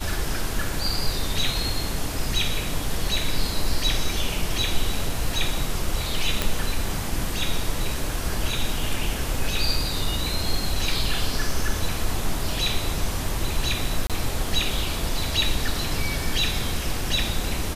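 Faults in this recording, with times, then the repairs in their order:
0:06.42: click
0:14.07–0:14.10: drop-out 27 ms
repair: click removal
repair the gap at 0:14.07, 27 ms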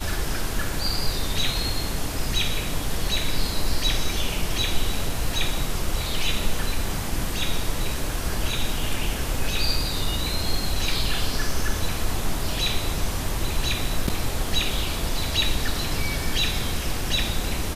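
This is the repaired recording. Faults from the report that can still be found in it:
none of them is left

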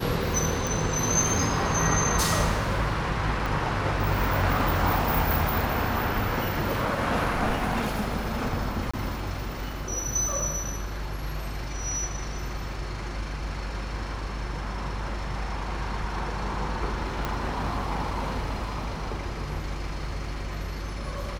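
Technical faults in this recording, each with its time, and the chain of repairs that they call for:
0:00.67: click
0:03.46: click
0:08.91–0:08.94: drop-out 25 ms
0:17.25: click −14 dBFS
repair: click removal
repair the gap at 0:08.91, 25 ms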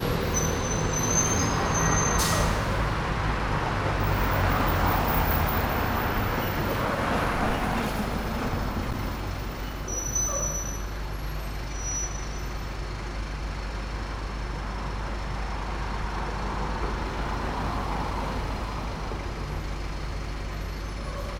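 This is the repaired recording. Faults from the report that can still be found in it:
none of them is left

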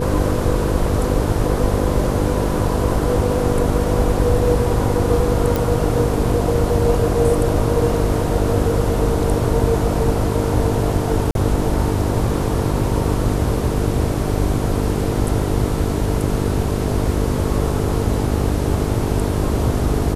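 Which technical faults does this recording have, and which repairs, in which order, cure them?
mains buzz 50 Hz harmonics 9 −22 dBFS
0:05.56: click
0:11.31–0:11.35: drop-out 42 ms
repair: click removal
hum removal 50 Hz, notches 9
repair the gap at 0:11.31, 42 ms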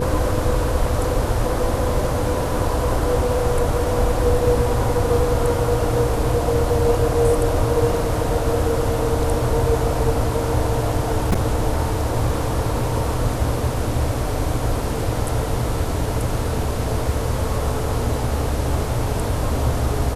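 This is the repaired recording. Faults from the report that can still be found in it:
none of them is left

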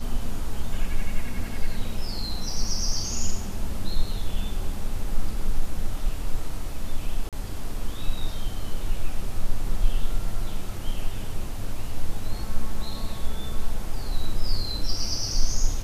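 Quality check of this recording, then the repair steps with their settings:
0:07.29–0:07.33: drop-out 37 ms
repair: repair the gap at 0:07.29, 37 ms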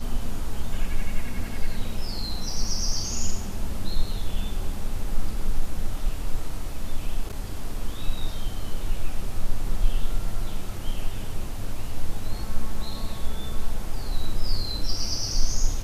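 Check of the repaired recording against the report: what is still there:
none of them is left

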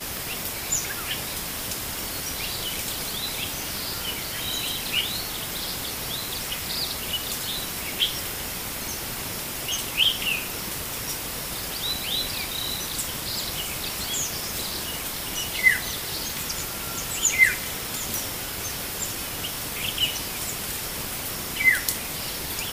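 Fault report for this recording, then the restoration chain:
scratch tick 33 1/3 rpm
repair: click removal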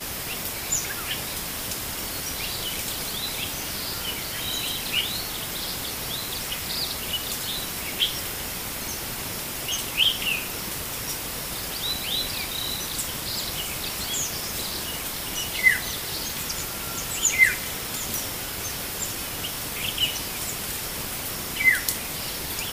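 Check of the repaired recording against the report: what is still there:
none of them is left

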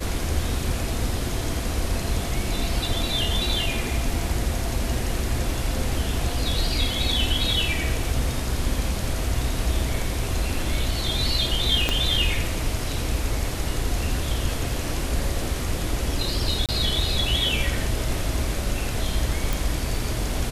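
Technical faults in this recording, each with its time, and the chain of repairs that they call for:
0:11.89: click −6 dBFS
0:16.66–0:16.69: drop-out 27 ms
0:19.53: click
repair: click removal
repair the gap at 0:16.66, 27 ms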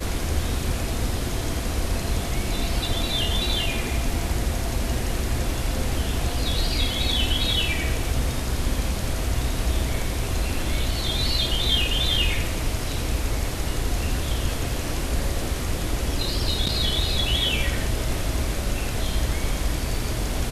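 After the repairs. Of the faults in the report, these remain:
0:11.89: click

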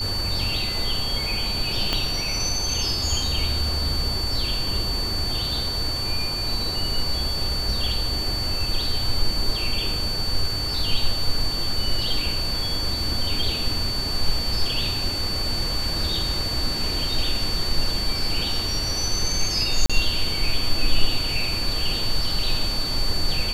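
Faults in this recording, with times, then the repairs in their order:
whistle 4,500 Hz −26 dBFS
0:01.93: click −8 dBFS
0:19.86–0:19.90: drop-out 36 ms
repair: click removal
notch filter 4,500 Hz, Q 30
repair the gap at 0:19.86, 36 ms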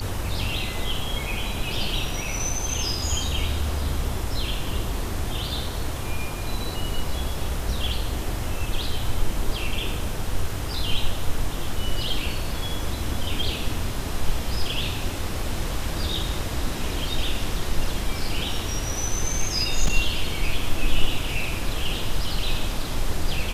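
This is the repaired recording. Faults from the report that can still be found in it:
0:01.93: click

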